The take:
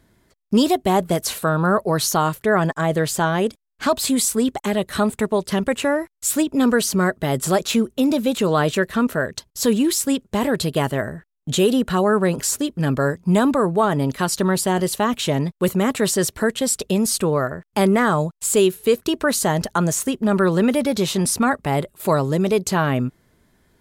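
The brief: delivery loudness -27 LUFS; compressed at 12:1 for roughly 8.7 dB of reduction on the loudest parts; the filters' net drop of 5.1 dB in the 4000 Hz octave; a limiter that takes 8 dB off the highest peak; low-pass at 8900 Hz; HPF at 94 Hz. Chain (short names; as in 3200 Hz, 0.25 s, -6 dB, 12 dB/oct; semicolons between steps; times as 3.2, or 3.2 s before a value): HPF 94 Hz; LPF 8900 Hz; bell 4000 Hz -6.5 dB; compressor 12:1, threshold -21 dBFS; gain +1 dB; limiter -17 dBFS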